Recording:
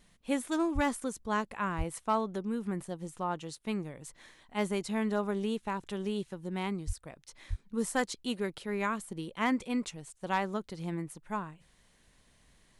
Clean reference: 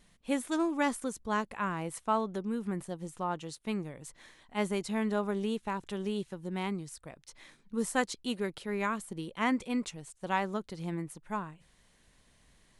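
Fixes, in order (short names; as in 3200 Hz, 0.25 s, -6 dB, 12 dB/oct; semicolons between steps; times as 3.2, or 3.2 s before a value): clip repair -19.5 dBFS; de-plosive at 0.74/1.77/6.86/7.49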